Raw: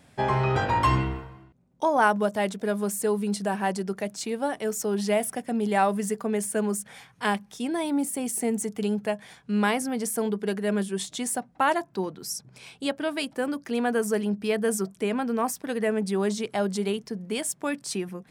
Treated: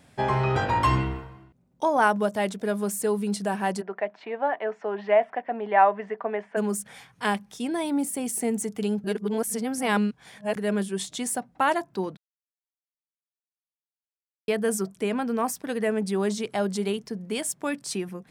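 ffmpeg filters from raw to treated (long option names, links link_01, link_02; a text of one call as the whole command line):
ffmpeg -i in.wav -filter_complex "[0:a]asplit=3[link_01][link_02][link_03];[link_01]afade=type=out:start_time=3.8:duration=0.02[link_04];[link_02]highpass=410,equalizer=frequency=680:width_type=q:width=4:gain=8,equalizer=frequency=970:width_type=q:width=4:gain=6,equalizer=frequency=1800:width_type=q:width=4:gain=5,lowpass=frequency=2600:width=0.5412,lowpass=frequency=2600:width=1.3066,afade=type=in:start_time=3.8:duration=0.02,afade=type=out:start_time=6.56:duration=0.02[link_05];[link_03]afade=type=in:start_time=6.56:duration=0.02[link_06];[link_04][link_05][link_06]amix=inputs=3:normalize=0,asplit=5[link_07][link_08][link_09][link_10][link_11];[link_07]atrim=end=9.042[link_12];[link_08]atrim=start=9.038:end=10.562,asetpts=PTS-STARTPTS,areverse[link_13];[link_09]atrim=start=10.558:end=12.17,asetpts=PTS-STARTPTS,afade=type=out:start_time=1.608:duration=0.004:curve=hsin[link_14];[link_10]atrim=start=12.17:end=14.48,asetpts=PTS-STARTPTS,volume=0[link_15];[link_11]atrim=start=14.48,asetpts=PTS-STARTPTS,afade=type=in:duration=0.004:curve=hsin[link_16];[link_12][link_13]acrossfade=duration=0.004:curve1=hsin:curve2=hsin[link_17];[link_14][link_15][link_16]concat=n=3:v=0:a=1[link_18];[link_17][link_18]acrossfade=duration=0.004:curve1=hsin:curve2=hsin" out.wav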